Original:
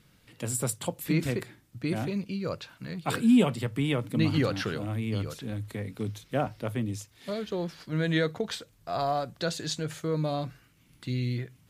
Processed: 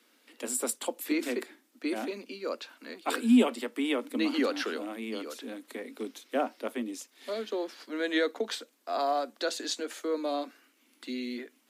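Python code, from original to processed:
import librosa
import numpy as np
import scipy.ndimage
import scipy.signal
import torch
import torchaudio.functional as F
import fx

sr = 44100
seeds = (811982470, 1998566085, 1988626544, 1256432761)

y = scipy.signal.sosfilt(scipy.signal.butter(16, 230.0, 'highpass', fs=sr, output='sos'), x)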